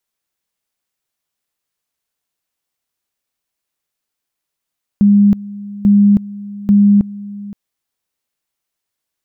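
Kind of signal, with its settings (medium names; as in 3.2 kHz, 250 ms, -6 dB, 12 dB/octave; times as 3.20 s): two-level tone 203 Hz -5.5 dBFS, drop 19.5 dB, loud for 0.32 s, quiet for 0.52 s, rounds 3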